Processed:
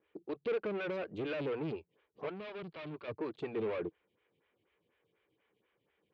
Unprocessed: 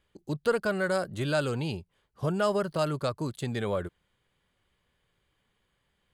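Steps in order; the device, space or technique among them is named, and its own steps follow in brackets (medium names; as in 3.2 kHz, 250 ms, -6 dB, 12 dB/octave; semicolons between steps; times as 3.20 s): vibe pedal into a guitar amplifier (lamp-driven phase shifter 4.1 Hz; valve stage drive 38 dB, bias 0.45; cabinet simulation 100–3600 Hz, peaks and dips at 320 Hz +8 dB, 450 Hz +9 dB, 2.4 kHz +7 dB); 2.29–3.08 s: graphic EQ 125/250/500/1000/2000/4000/8000 Hz -4/-4/-10/-3/-5/+4/-10 dB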